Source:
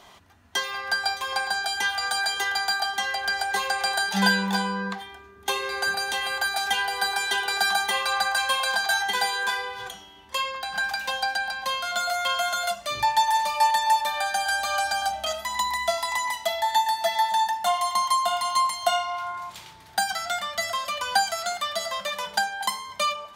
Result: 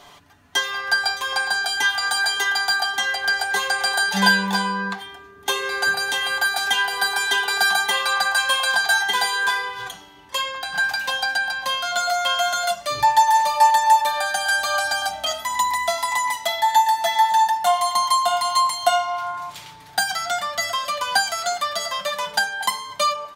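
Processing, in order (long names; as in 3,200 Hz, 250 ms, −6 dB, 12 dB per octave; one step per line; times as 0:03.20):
comb filter 6.9 ms, depth 52%
level +3 dB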